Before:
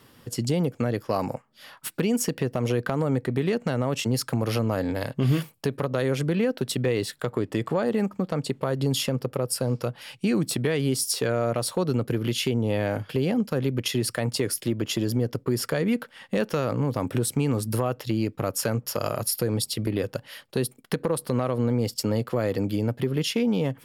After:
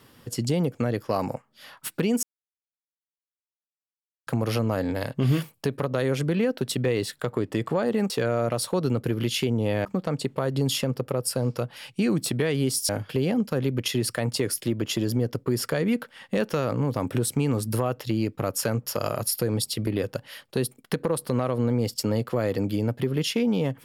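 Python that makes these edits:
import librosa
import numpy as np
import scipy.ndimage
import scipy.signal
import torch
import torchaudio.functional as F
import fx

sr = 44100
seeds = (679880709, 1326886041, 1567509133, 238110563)

y = fx.edit(x, sr, fx.silence(start_s=2.23, length_s=2.04),
    fx.move(start_s=11.14, length_s=1.75, to_s=8.1), tone=tone)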